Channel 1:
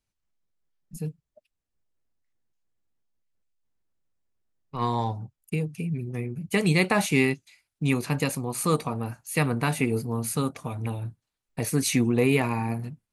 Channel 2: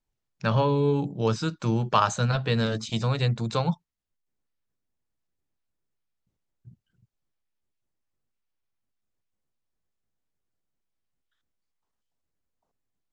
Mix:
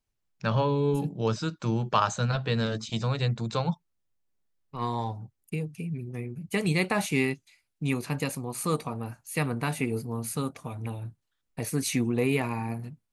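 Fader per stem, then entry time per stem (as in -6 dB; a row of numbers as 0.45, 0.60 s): -4.0, -2.5 dB; 0.00, 0.00 s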